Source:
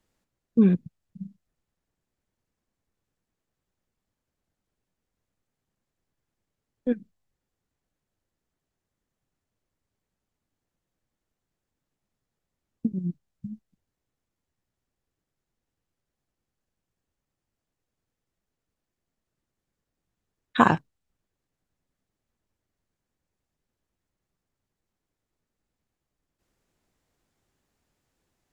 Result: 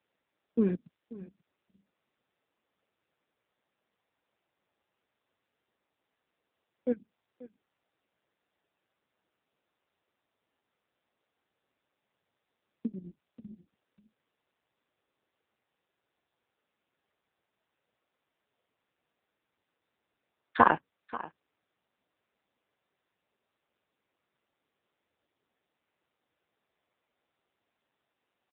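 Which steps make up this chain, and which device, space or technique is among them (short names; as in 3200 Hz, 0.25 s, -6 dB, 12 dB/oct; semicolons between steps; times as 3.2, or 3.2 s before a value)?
satellite phone (BPF 340–3200 Hz; echo 0.535 s -17.5 dB; AMR-NB 6.7 kbps 8000 Hz)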